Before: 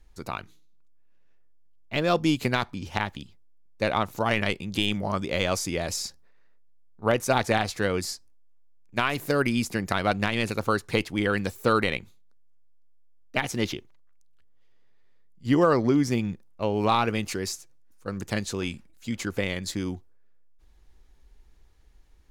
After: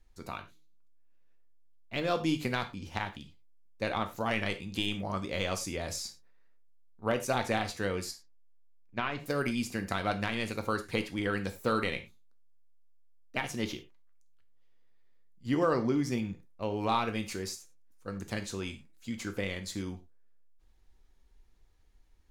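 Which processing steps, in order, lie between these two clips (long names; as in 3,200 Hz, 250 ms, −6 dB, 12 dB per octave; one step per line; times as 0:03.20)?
0:08.11–0:09.26: high-frequency loss of the air 160 metres
reverb whose tail is shaped and stops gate 130 ms falling, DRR 6.5 dB
level −7.5 dB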